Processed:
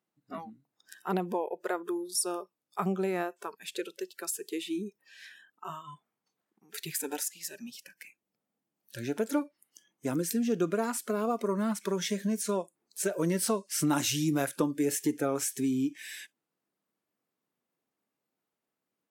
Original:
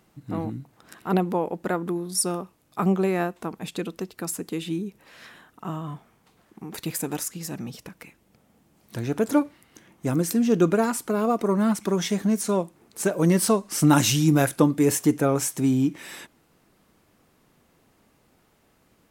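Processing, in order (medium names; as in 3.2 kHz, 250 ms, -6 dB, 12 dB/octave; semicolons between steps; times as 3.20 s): high-pass 190 Hz 12 dB/octave; spectral noise reduction 22 dB; compression 2:1, threshold -27 dBFS, peak gain reduction 8 dB; trim -2 dB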